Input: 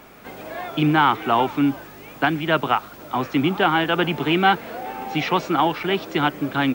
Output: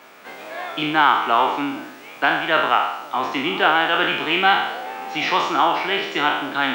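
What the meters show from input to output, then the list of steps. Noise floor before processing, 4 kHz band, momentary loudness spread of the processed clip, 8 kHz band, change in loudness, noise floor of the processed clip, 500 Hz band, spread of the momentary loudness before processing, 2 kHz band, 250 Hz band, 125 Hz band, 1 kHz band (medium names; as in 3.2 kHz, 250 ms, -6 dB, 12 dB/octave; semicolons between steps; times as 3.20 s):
-42 dBFS, +4.5 dB, 13 LU, no reading, +1.5 dB, -41 dBFS, -0.5 dB, 14 LU, +4.5 dB, -6.0 dB, -12.5 dB, +2.5 dB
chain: spectral sustain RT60 0.83 s; frequency weighting A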